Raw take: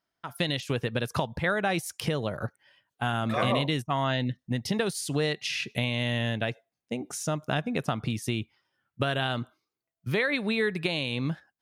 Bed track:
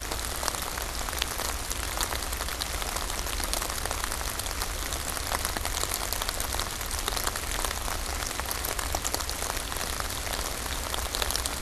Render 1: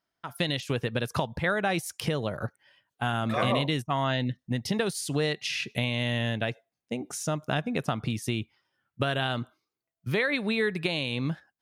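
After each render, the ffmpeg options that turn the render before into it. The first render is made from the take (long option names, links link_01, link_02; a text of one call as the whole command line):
ffmpeg -i in.wav -af anull out.wav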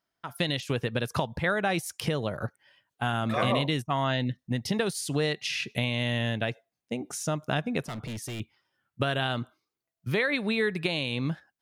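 ffmpeg -i in.wav -filter_complex "[0:a]asettb=1/sr,asplit=3[link_01][link_02][link_03];[link_01]atrim=end=7.804[link_04];[link_02]atrim=start=7.8:end=8.4,asetpts=PTS-STARTPTS,afade=type=in:duration=0.004:curve=qsin,afade=type=out:start_time=0.596:duration=0.004:curve=qsin,volume=33dB,asoftclip=hard,volume=-33dB[link_05];[link_03]atrim=start=8.396[link_06];[link_04][link_05]acrossfade=duration=0.004:curve1=hsin:curve2=qsin[link_07];[link_07][link_06]acrossfade=duration=0.004:curve1=qsin:curve2=hsin" out.wav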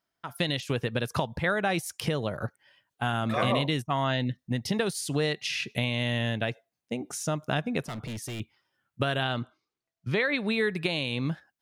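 ffmpeg -i in.wav -filter_complex "[0:a]asettb=1/sr,asplit=3[link_01][link_02][link_03];[link_01]atrim=end=9.234[link_04];[link_02]atrim=start=9.23:end=10.46,asetpts=PTS-STARTPTS,afade=type=in:duration=0.004:curve=qsin,afade=type=out:start_time=1.226:duration=0.004:curve=qsin,lowpass=6500[link_05];[link_03]atrim=start=10.456[link_06];[link_04][link_05]acrossfade=duration=0.004:curve1=hsin:curve2=qsin[link_07];[link_07][link_06]acrossfade=duration=0.004:curve1=qsin:curve2=hsin" out.wav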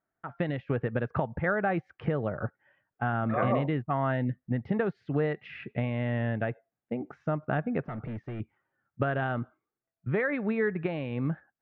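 ffmpeg -i in.wav -af "lowpass=frequency=1800:width=0.5412,lowpass=frequency=1800:width=1.3066,bandreject=frequency=1000:width=9" out.wav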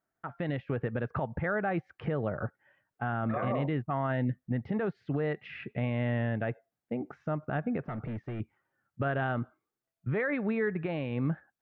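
ffmpeg -i in.wav -af "alimiter=limit=-22dB:level=0:latency=1:release=46" out.wav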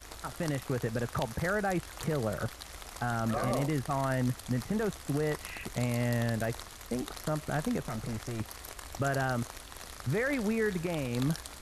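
ffmpeg -i in.wav -i bed.wav -filter_complex "[1:a]volume=-14dB[link_01];[0:a][link_01]amix=inputs=2:normalize=0" out.wav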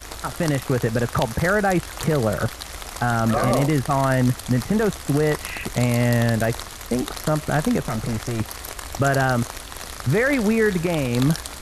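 ffmpeg -i in.wav -af "volume=11dB" out.wav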